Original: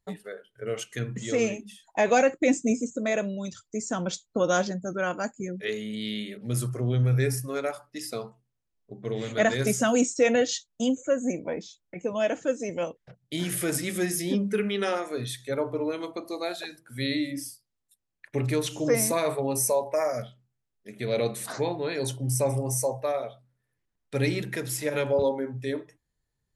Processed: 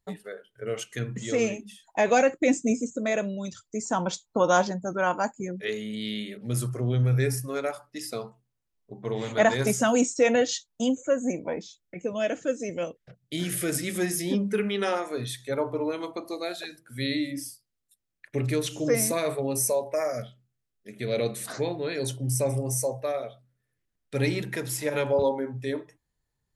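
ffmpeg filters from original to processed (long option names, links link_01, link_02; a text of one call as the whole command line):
ffmpeg -i in.wav -af "asetnsamples=nb_out_samples=441:pad=0,asendcmd='3.86 equalizer g 12.5;5.51 equalizer g 1;8.93 equalizer g 10.5;9.7 equalizer g 4.5;11.62 equalizer g -7.5;13.95 equalizer g 3.5;16.34 equalizer g -6.5;24.18 equalizer g 3.5',equalizer=frequency=910:width_type=o:width=0.56:gain=0.5" out.wav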